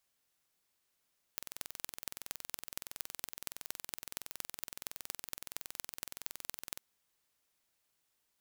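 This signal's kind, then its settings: pulse train 21.5 per s, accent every 5, -9.5 dBFS 5.41 s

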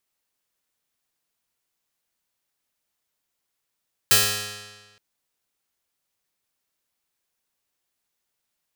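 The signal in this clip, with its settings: plucked string G#2, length 0.87 s, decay 1.37 s, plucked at 0.35, bright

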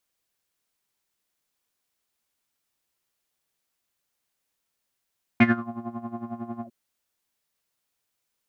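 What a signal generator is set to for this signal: synth patch with tremolo A#3, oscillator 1 triangle, interval +7 st, detune 18 cents, sub -14 dB, filter lowpass, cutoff 420 Hz, Q 8.7, filter envelope 2.5 oct, filter decay 0.27 s, filter sustain 45%, attack 5.3 ms, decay 0.20 s, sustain -19 dB, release 0.07 s, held 1.23 s, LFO 11 Hz, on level 13.5 dB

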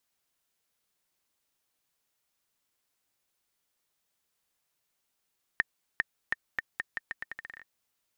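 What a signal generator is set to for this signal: bouncing ball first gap 0.40 s, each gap 0.81, 1.82 kHz, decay 26 ms -11 dBFS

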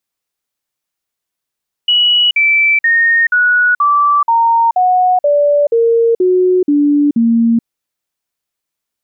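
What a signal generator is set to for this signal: stepped sine 2.93 kHz down, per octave 3, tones 12, 0.43 s, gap 0.05 s -7.5 dBFS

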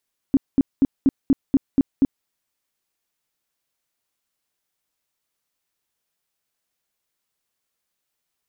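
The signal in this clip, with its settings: tone bursts 272 Hz, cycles 8, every 0.24 s, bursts 8, -11 dBFS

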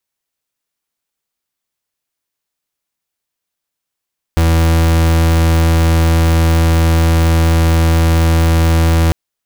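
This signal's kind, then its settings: pulse 82.2 Hz, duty 38% -10.5 dBFS 4.75 s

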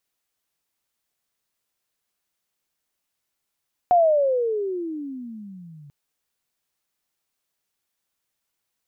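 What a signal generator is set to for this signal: gliding synth tone sine, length 1.99 s, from 727 Hz, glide -28.5 st, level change -30 dB, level -12 dB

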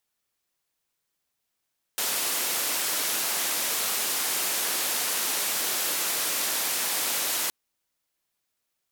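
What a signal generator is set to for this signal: noise band 270–16000 Hz, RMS -27.5 dBFS 5.52 s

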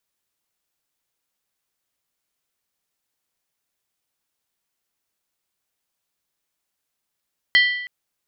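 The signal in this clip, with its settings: skin hit length 0.32 s, lowest mode 1.97 kHz, decay 0.87 s, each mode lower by 5.5 dB, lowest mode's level -10.5 dB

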